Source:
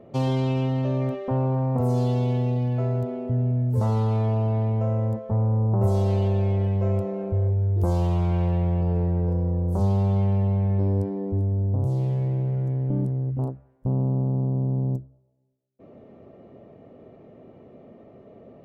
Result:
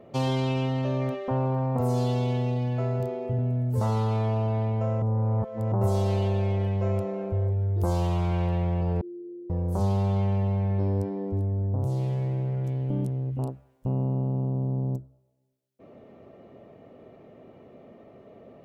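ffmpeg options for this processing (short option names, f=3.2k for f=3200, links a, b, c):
-filter_complex "[0:a]asettb=1/sr,asplit=3[a][b][c];[a]atrim=end=2.974[d];[b]atrim=start=2.97:end=3.39,asetpts=PTS-STARTPTS,afade=t=in:d=0.004:c=qsin,afade=t=out:st=0.416:d=0.004:c=qsin,asplit=2[e][f];[f]adelay=30,volume=-3.5dB[g];[e][g]amix=inputs=2:normalize=0,atrim=end_sample=18522[h];[c]atrim=start=3.386[i];[d][h]acrossfade=d=0.004:c1=hsin:c2=qsin[j];[j][i]acrossfade=d=0.004:c1=qsin:c2=hsin,asettb=1/sr,asplit=3[k][l][m];[k]atrim=end=9.014[n];[l]atrim=start=9.01:end=9.5,asetpts=PTS-STARTPTS,afade=t=in:d=0.004:c=qsin,afade=t=out:st=0.486:d=0.004:c=qsin,asuperpass=centerf=340:order=4:qfactor=6.7[o];[m]atrim=start=9.496[p];[n][o]acrossfade=d=0.004:c1=hsin:c2=qsin[q];[q][p]acrossfade=d=0.004:c1=qsin:c2=hsin,asettb=1/sr,asplit=3[r][s][t];[r]atrim=end=12.644[u];[s]atrim=start=12.64:end=14.92,asetpts=PTS-STARTPTS,afade=t=in:d=0.004:c=qsin,afade=t=out:st=2.276:d=0.004:c=qsin,highshelf=f=2.3k:t=q:w=1.5:g=6.5[v];[t]atrim=start=14.916[w];[u][v]acrossfade=d=0.004:c1=hsin:c2=qsin[x];[x][w]acrossfade=d=0.004:c1=qsin:c2=hsin,asplit=3[y][z][aa];[y]atrim=end=5.022[ab];[z]atrim=start=5.018:end=5.722,asetpts=PTS-STARTPTS,areverse[ac];[aa]atrim=start=5.718[ad];[ab][ac]acrossfade=d=0.004:c1=hsin:c2=hsin[ae];[ae][ad]acrossfade=d=0.004:c1=hsin:c2=hsin,tiltshelf=f=750:g=-3.5"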